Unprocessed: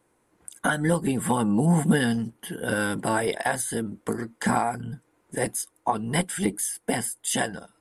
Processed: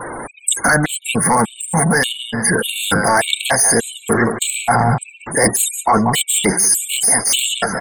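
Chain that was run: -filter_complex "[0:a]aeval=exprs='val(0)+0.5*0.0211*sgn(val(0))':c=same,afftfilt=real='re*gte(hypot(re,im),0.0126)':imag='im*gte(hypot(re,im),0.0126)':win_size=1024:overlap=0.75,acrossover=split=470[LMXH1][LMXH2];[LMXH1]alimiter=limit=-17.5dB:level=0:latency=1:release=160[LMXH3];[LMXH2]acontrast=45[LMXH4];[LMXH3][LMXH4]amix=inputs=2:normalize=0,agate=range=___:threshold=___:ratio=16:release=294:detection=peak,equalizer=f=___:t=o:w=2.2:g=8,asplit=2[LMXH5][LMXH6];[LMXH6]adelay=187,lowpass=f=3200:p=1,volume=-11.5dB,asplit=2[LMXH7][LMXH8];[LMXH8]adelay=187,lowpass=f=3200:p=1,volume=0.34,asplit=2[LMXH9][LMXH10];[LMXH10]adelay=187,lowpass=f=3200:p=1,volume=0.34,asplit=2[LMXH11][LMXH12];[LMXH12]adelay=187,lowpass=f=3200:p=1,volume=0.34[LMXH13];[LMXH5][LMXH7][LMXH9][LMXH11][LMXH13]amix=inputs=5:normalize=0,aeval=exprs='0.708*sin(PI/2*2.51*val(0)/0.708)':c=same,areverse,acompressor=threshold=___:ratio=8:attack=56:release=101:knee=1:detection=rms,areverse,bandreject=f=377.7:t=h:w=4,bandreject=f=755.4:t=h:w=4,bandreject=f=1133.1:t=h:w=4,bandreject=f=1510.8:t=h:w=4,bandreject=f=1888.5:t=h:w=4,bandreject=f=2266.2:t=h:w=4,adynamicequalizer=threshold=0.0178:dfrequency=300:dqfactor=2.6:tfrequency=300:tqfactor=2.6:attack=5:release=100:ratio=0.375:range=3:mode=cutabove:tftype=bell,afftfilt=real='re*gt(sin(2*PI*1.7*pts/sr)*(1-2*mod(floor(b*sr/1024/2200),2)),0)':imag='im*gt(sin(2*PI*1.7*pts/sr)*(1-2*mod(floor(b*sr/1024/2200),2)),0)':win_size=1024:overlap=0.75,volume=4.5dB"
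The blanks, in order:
-7dB, -31dB, 5700, -17dB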